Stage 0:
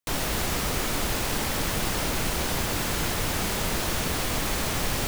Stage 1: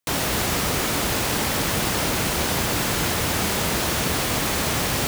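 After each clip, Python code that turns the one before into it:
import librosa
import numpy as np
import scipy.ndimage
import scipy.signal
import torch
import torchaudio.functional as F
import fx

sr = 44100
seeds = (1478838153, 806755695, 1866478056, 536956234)

y = scipy.signal.sosfilt(scipy.signal.butter(2, 65.0, 'highpass', fs=sr, output='sos'), x)
y = F.gain(torch.from_numpy(y), 5.0).numpy()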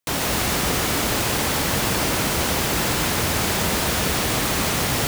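y = x + 10.0 ** (-4.5 / 20.0) * np.pad(x, (int(144 * sr / 1000.0), 0))[:len(x)]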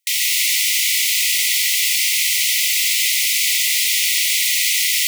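y = fx.brickwall_highpass(x, sr, low_hz=1900.0)
y = F.gain(torch.from_numpy(y), 8.0).numpy()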